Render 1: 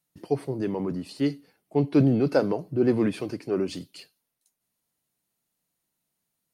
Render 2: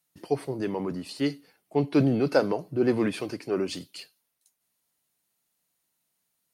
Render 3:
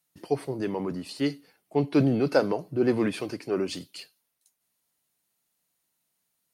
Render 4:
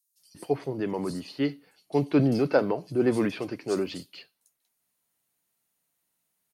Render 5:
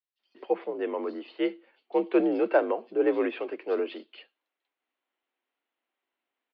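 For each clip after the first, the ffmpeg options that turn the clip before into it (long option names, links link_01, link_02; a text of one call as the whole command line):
ffmpeg -i in.wav -af "lowshelf=frequency=490:gain=-7.5,volume=3.5dB" out.wav
ffmpeg -i in.wav -af anull out.wav
ffmpeg -i in.wav -filter_complex "[0:a]acrossover=split=4600[link_01][link_02];[link_01]adelay=190[link_03];[link_03][link_02]amix=inputs=2:normalize=0" out.wav
ffmpeg -i in.wav -af "highpass=frequency=230:width_type=q:width=0.5412,highpass=frequency=230:width_type=q:width=1.307,lowpass=frequency=3300:width_type=q:width=0.5176,lowpass=frequency=3300:width_type=q:width=0.7071,lowpass=frequency=3300:width_type=q:width=1.932,afreqshift=55" out.wav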